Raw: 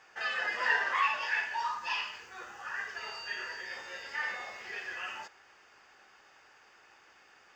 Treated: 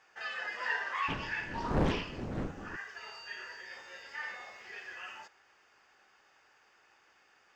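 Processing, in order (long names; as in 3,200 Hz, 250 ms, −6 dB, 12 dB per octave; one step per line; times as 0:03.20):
0:01.08–0:02.75: wind on the microphone 340 Hz −33 dBFS
highs frequency-modulated by the lows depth 0.78 ms
level −5.5 dB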